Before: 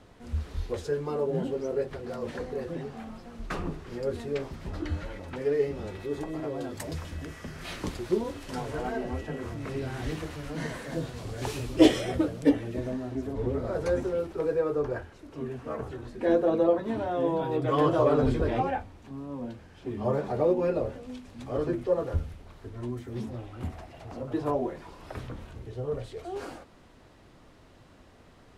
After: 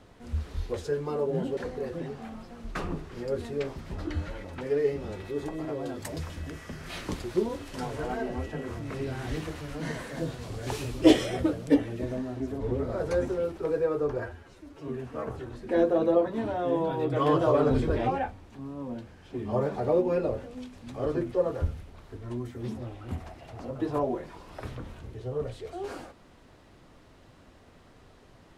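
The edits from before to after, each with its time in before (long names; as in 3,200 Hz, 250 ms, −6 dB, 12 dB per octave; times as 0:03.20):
0:01.57–0:02.32: remove
0:14.94–0:15.40: time-stretch 1.5×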